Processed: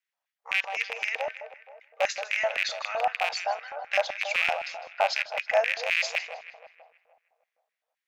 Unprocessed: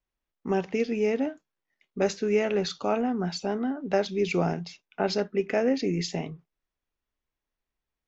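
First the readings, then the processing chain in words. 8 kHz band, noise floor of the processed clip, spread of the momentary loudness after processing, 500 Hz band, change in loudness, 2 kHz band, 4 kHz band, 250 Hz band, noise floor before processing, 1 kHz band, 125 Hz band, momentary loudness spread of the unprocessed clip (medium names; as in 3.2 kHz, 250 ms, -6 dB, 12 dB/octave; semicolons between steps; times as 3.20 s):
no reading, under -85 dBFS, 10 LU, -4.5 dB, 0.0 dB, +10.5 dB, +4.5 dB, under -35 dB, under -85 dBFS, +4.0 dB, under -30 dB, 8 LU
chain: rattle on loud lows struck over -29 dBFS, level -17 dBFS; brick-wall FIR high-pass 460 Hz; tape echo 157 ms, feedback 63%, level -9 dB, low-pass 3 kHz; LFO high-pass square 3.9 Hz 730–1900 Hz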